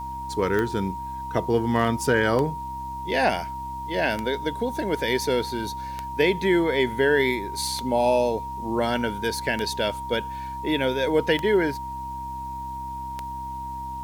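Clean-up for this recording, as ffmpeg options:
-af "adeclick=t=4,bandreject=f=65.8:t=h:w=4,bandreject=f=131.6:t=h:w=4,bandreject=f=197.4:t=h:w=4,bandreject=f=263.2:t=h:w=4,bandreject=f=329:t=h:w=4,bandreject=f=940:w=30,agate=range=0.0891:threshold=0.0562"

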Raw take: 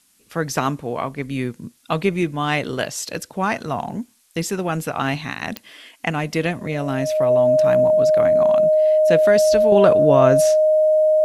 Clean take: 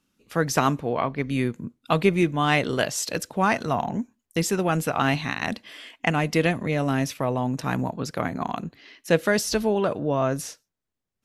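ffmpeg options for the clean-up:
-af "adeclick=t=4,bandreject=f=620:w=30,agate=range=0.0891:threshold=0.0141,asetnsamples=n=441:p=0,asendcmd='9.72 volume volume -7.5dB',volume=1"

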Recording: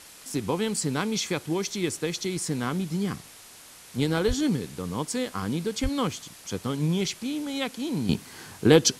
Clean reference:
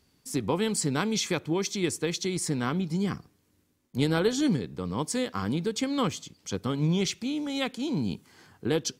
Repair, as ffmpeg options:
-filter_complex "[0:a]asplit=3[s0][s1][s2];[s0]afade=t=out:st=4.27:d=0.02[s3];[s1]highpass=f=140:w=0.5412,highpass=f=140:w=1.3066,afade=t=in:st=4.27:d=0.02,afade=t=out:st=4.39:d=0.02[s4];[s2]afade=t=in:st=4.39:d=0.02[s5];[s3][s4][s5]amix=inputs=3:normalize=0,asplit=3[s6][s7][s8];[s6]afade=t=out:st=5.82:d=0.02[s9];[s7]highpass=f=140:w=0.5412,highpass=f=140:w=1.3066,afade=t=in:st=5.82:d=0.02,afade=t=out:st=5.94:d=0.02[s10];[s8]afade=t=in:st=5.94:d=0.02[s11];[s9][s10][s11]amix=inputs=3:normalize=0,afwtdn=0.005,asetnsamples=n=441:p=0,asendcmd='8.09 volume volume -10dB',volume=1"

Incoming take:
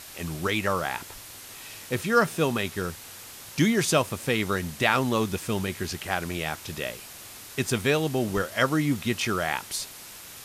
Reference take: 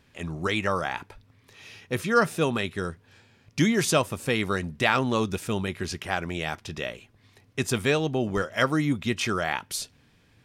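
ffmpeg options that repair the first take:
-af "afwtdn=0.0079"

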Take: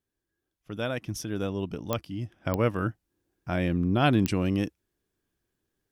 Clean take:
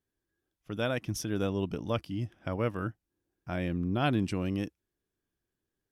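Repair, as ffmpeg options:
-af "adeclick=t=4,asetnsamples=n=441:p=0,asendcmd='2.45 volume volume -5.5dB',volume=1"

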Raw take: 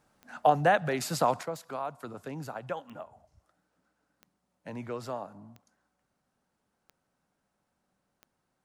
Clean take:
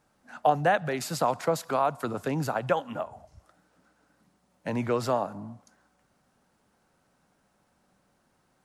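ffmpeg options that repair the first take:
-af "adeclick=t=4,asetnsamples=n=441:p=0,asendcmd='1.43 volume volume 10dB',volume=1"

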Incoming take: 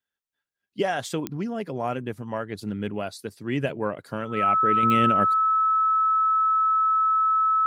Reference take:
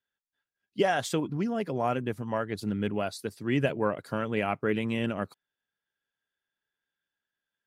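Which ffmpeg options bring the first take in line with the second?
-af "adeclick=t=4,bandreject=f=1300:w=30,asetnsamples=n=441:p=0,asendcmd='4.83 volume volume -6dB',volume=1"

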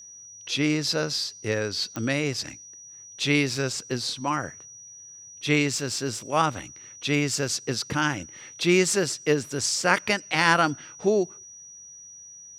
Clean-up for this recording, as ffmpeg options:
-af "adeclick=t=4,bandreject=f=5800:w=30"

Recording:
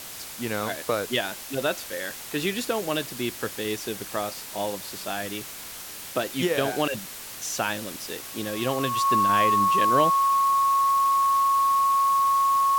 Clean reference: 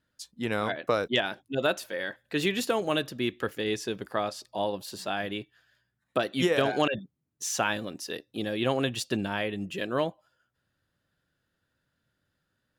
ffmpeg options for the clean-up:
-af "bandreject=f=1100:w=30,afwtdn=0.013,asetnsamples=n=441:p=0,asendcmd='9.29 volume volume -4dB',volume=1"

